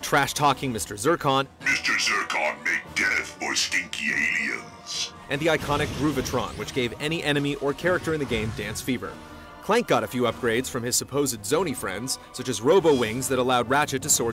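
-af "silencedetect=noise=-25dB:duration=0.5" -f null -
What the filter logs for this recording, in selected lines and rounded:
silence_start: 9.09
silence_end: 9.69 | silence_duration: 0.60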